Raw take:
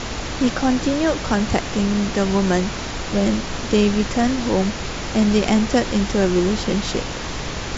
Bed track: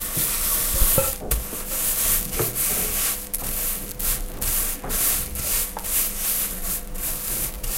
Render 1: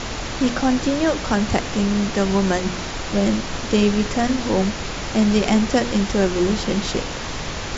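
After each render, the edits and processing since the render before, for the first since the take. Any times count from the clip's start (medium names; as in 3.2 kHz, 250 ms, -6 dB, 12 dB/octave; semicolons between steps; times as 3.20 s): de-hum 60 Hz, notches 8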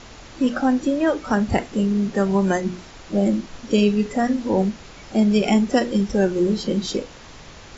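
noise print and reduce 14 dB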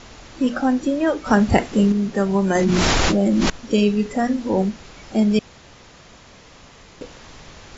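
1.26–1.92 s: gain +4.5 dB; 2.55–3.50 s: level flattener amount 100%; 5.39–7.01 s: room tone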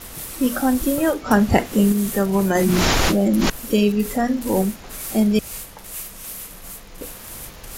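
add bed track -10.5 dB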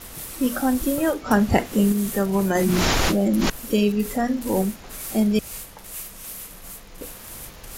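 trim -2.5 dB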